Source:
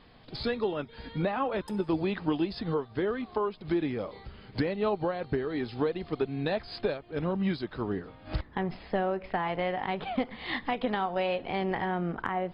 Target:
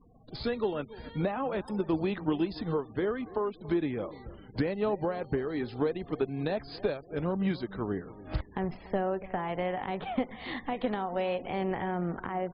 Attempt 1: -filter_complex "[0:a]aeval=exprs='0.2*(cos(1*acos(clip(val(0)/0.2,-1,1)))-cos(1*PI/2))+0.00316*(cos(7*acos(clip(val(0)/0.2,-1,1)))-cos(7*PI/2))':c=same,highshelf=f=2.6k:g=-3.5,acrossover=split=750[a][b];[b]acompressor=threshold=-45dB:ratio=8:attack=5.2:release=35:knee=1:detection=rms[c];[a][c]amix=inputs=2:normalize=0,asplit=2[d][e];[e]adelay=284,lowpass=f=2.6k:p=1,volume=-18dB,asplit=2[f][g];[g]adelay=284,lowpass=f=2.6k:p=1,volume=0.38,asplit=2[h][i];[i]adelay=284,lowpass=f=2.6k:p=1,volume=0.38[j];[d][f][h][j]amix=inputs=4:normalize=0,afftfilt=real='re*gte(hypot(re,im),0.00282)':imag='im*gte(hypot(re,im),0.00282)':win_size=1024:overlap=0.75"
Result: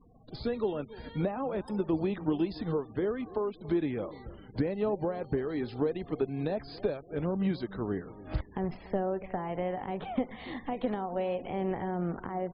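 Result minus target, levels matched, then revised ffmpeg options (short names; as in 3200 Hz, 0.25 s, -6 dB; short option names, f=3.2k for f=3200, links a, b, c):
compressor: peak gain reduction +7 dB
-filter_complex "[0:a]aeval=exprs='0.2*(cos(1*acos(clip(val(0)/0.2,-1,1)))-cos(1*PI/2))+0.00316*(cos(7*acos(clip(val(0)/0.2,-1,1)))-cos(7*PI/2))':c=same,highshelf=f=2.6k:g=-3.5,acrossover=split=750[a][b];[b]acompressor=threshold=-37dB:ratio=8:attack=5.2:release=35:knee=1:detection=rms[c];[a][c]amix=inputs=2:normalize=0,asplit=2[d][e];[e]adelay=284,lowpass=f=2.6k:p=1,volume=-18dB,asplit=2[f][g];[g]adelay=284,lowpass=f=2.6k:p=1,volume=0.38,asplit=2[h][i];[i]adelay=284,lowpass=f=2.6k:p=1,volume=0.38[j];[d][f][h][j]amix=inputs=4:normalize=0,afftfilt=real='re*gte(hypot(re,im),0.00282)':imag='im*gte(hypot(re,im),0.00282)':win_size=1024:overlap=0.75"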